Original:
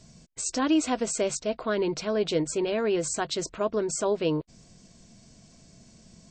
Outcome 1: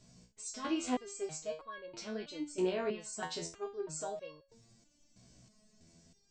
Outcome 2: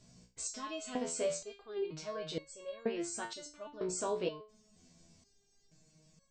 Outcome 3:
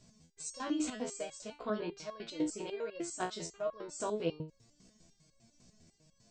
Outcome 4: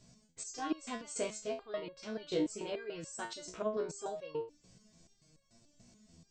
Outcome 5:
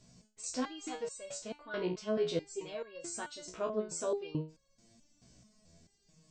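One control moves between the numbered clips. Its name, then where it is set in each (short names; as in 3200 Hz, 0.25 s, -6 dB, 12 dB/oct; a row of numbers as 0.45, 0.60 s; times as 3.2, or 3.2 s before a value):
stepped resonator, rate: 3.1, 2.1, 10, 6.9, 4.6 Hz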